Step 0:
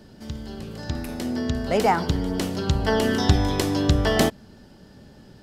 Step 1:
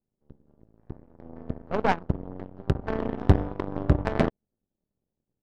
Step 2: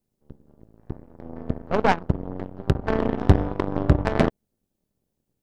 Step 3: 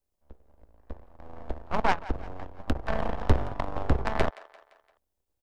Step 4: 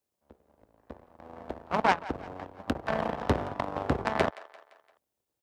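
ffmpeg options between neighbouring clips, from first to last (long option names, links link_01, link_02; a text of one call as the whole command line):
ffmpeg -i in.wav -af "lowpass=frequency=1800:poles=1,aeval=exprs='0.596*(cos(1*acos(clip(val(0)/0.596,-1,1)))-cos(1*PI/2))+0.133*(cos(2*acos(clip(val(0)/0.596,-1,1)))-cos(2*PI/2))+0.0188*(cos(6*acos(clip(val(0)/0.596,-1,1)))-cos(6*PI/2))+0.0841*(cos(7*acos(clip(val(0)/0.596,-1,1)))-cos(7*PI/2))':channel_layout=same,adynamicsmooth=sensitivity=0.5:basefreq=990" out.wav
ffmpeg -i in.wav -filter_complex "[0:a]highshelf=frequency=4900:gain=5,asplit=2[link_01][link_02];[link_02]alimiter=limit=-14dB:level=0:latency=1:release=198,volume=0dB[link_03];[link_01][link_03]amix=inputs=2:normalize=0" out.wav
ffmpeg -i in.wav -filter_complex "[0:a]acrossover=split=100|590[link_01][link_02][link_03];[link_02]aeval=exprs='abs(val(0))':channel_layout=same[link_04];[link_03]aecho=1:1:172|344|516|688:0.133|0.0667|0.0333|0.0167[link_05];[link_01][link_04][link_05]amix=inputs=3:normalize=0,volume=-3.5dB" out.wav
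ffmpeg -i in.wav -af "highpass=130,volume=1.5dB" out.wav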